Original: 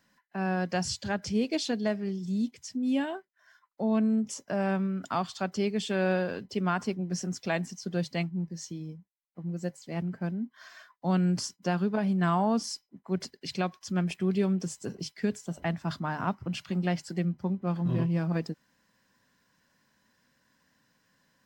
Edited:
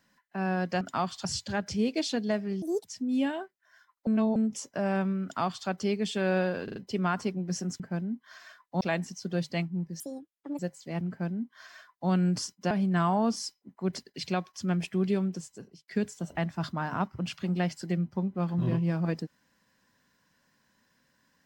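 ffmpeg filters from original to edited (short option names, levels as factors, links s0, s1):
-filter_complex "[0:a]asplit=16[s0][s1][s2][s3][s4][s5][s6][s7][s8][s9][s10][s11][s12][s13][s14][s15];[s0]atrim=end=0.812[s16];[s1]atrim=start=4.978:end=5.422[s17];[s2]atrim=start=0.808:end=2.184[s18];[s3]atrim=start=2.18:end=2.6,asetpts=PTS-STARTPTS,asetrate=77616,aresample=44100[s19];[s4]atrim=start=2.596:end=3.812[s20];[s5]atrim=start=3.808:end=4.102,asetpts=PTS-STARTPTS,areverse[s21];[s6]atrim=start=4.098:end=6.422[s22];[s7]atrim=start=6.378:end=6.422[s23];[s8]atrim=start=6.378:end=6.422[s24];[s9]atrim=start=6.378:end=7.422[s25];[s10]atrim=start=10.098:end=11.112[s26];[s11]atrim=start=7.418:end=8.614[s27];[s12]atrim=start=8.61:end=9.6,asetpts=PTS-STARTPTS,asetrate=74088,aresample=44100[s28];[s13]atrim=start=9.596:end=11.722[s29];[s14]atrim=start=11.978:end=15.15,asetpts=PTS-STARTPTS,afade=t=out:st=2.362:d=0.81[s30];[s15]atrim=start=15.15,asetpts=PTS-STARTPTS,afade=t=in:d=0.004:c=hsin[s31];[s16][s17]acrossfade=d=0.004:c1=hsin:c2=hsin[s32];[s32][s18]acrossfade=d=0.004:c1=hsin:c2=hsin[s33];[s33][s19]acrossfade=d=0.004:c1=hsin:c2=hsin[s34];[s34][s20]acrossfade=d=0.004:c1=hsin:c2=hsin[s35];[s35][s21]acrossfade=d=0.004:c1=hsin:c2=hsin[s36];[s36][s22]acrossfade=d=0.004:c1=hsin:c2=hsin[s37];[s37][s23]acrossfade=d=0.004:c1=hsin:c2=hsin[s38];[s38][s24]acrossfade=d=0.004:c1=hsin:c2=hsin[s39];[s39][s25]acrossfade=d=0.004:c1=hsin:c2=hsin[s40];[s40][s26]acrossfade=d=0.004:c1=hsin:c2=hsin[s41];[s41][s27]acrossfade=d=0.004:c1=hsin:c2=hsin[s42];[s42][s28]acrossfade=d=0.004:c1=hsin:c2=hsin[s43];[s43][s29]acrossfade=d=0.004:c1=hsin:c2=hsin[s44];[s30][s31]concat=n=2:v=0:a=1[s45];[s44][s45]acrossfade=d=0.004:c1=hsin:c2=hsin"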